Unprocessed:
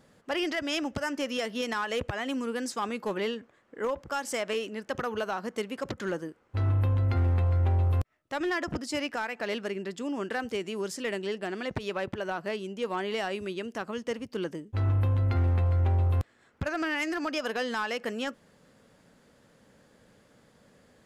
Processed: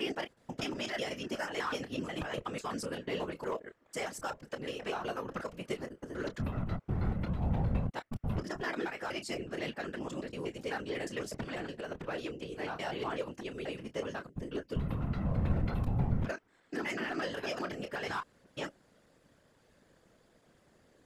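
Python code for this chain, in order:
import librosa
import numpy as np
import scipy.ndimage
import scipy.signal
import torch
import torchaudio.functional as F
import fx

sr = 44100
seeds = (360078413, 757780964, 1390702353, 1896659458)

y = fx.block_reorder(x, sr, ms=123.0, group=4)
y = fx.chorus_voices(y, sr, voices=6, hz=0.11, base_ms=27, depth_ms=1.5, mix_pct=25)
y = fx.whisperise(y, sr, seeds[0])
y = F.gain(torch.from_numpy(y), -3.5).numpy()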